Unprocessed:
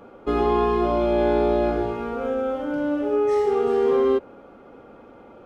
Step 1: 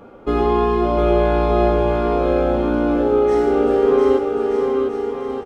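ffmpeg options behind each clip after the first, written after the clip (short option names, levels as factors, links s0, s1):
-filter_complex "[0:a]lowshelf=f=180:g=4.5,asplit=2[s0][s1];[s1]aecho=0:1:700|1225|1619|1914|2136:0.631|0.398|0.251|0.158|0.1[s2];[s0][s2]amix=inputs=2:normalize=0,volume=1.33"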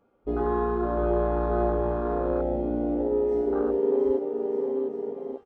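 -af "afwtdn=0.141,volume=0.376"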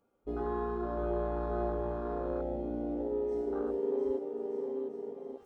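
-af "bass=f=250:g=0,treble=f=4000:g=9,areverse,acompressor=mode=upward:threshold=0.00708:ratio=2.5,areverse,volume=0.376"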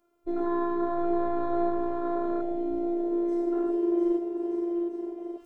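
-af "afftfilt=real='hypot(re,im)*cos(PI*b)':imag='0':win_size=512:overlap=0.75,volume=2.82"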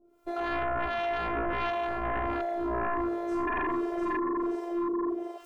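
-filter_complex "[0:a]acrossover=split=610[s0][s1];[s0]aeval=exprs='val(0)*(1-1/2+1/2*cos(2*PI*1.4*n/s))':c=same[s2];[s1]aeval=exprs='val(0)*(1-1/2-1/2*cos(2*PI*1.4*n/s))':c=same[s3];[s2][s3]amix=inputs=2:normalize=0,aeval=exprs='0.1*sin(PI/2*5.01*val(0)/0.1)':c=same,volume=0.473"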